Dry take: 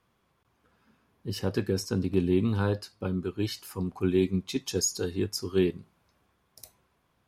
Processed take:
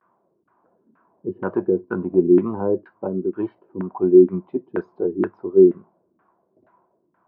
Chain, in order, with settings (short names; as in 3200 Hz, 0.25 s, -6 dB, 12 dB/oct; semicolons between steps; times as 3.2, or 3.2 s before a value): vibrato 0.38 Hz 42 cents; LFO low-pass saw down 2.1 Hz 260–1600 Hz; speaker cabinet 170–3200 Hz, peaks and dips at 190 Hz +5 dB, 350 Hz +10 dB, 640 Hz +8 dB, 980 Hz +9 dB, 1500 Hz +5 dB; gain -1 dB